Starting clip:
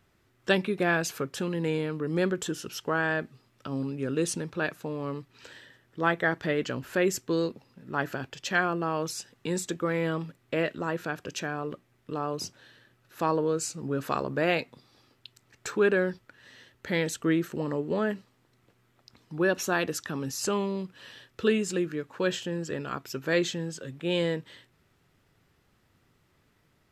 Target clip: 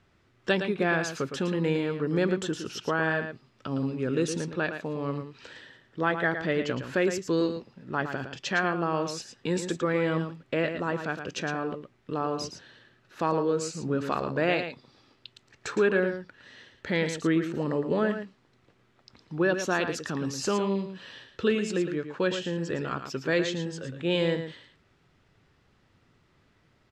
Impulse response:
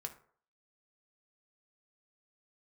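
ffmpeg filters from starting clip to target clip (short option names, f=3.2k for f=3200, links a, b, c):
-filter_complex "[0:a]lowpass=5.8k,asplit=2[a][b];[b]alimiter=limit=-19dB:level=0:latency=1:release=499,volume=1dB[c];[a][c]amix=inputs=2:normalize=0,aecho=1:1:112:0.376,volume=-4.5dB"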